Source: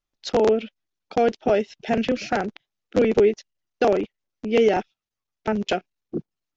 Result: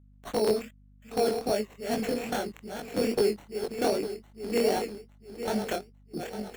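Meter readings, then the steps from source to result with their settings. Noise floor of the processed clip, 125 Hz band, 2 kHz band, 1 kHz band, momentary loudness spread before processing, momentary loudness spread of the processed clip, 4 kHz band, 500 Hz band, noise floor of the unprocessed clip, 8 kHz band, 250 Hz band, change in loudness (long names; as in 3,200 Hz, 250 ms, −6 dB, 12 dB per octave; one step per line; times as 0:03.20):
−56 dBFS, −6.5 dB, −7.5 dB, −7.5 dB, 15 LU, 13 LU, −2.5 dB, −7.0 dB, below −85 dBFS, can't be measured, −6.5 dB, −7.5 dB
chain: feedback delay that plays each chunk backwards 427 ms, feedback 64%, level −8 dB
decimation without filtering 9×
chorus effect 2.5 Hz, delay 18.5 ms, depth 7 ms
mains hum 50 Hz, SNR 26 dB
level −5 dB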